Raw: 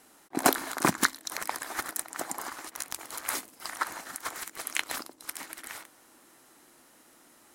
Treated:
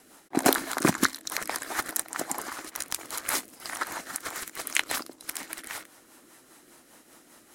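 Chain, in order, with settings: rotary cabinet horn 5 Hz; trim +6 dB

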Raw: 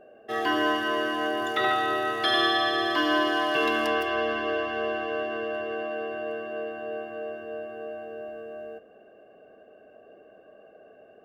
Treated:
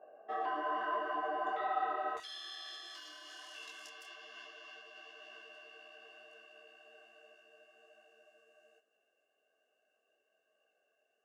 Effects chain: peak limiter -23 dBFS, peak gain reduction 10 dB; band-pass filter 890 Hz, Q 2.4, from 2.17 s 6.9 kHz; detune thickener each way 39 cents; trim +5 dB

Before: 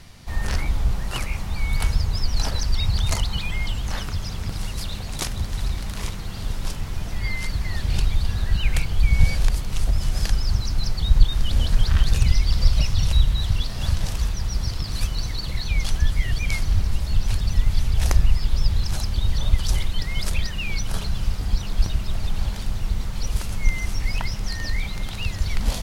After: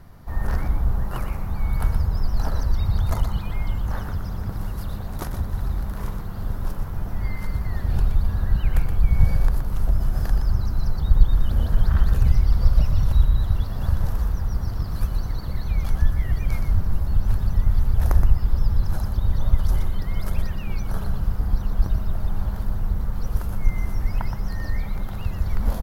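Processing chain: high-order bell 4.5 kHz -15.5 dB 2.5 oct; on a send: delay 121 ms -7.5 dB

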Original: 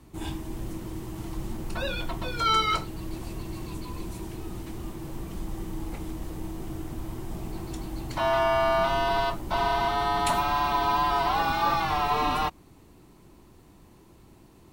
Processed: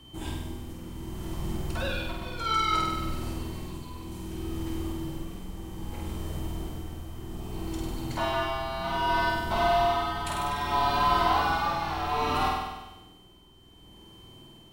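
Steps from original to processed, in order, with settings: whistle 3.1 kHz -52 dBFS; flutter echo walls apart 8.4 m, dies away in 1.1 s; tremolo 0.63 Hz, depth 53%; trim -1.5 dB

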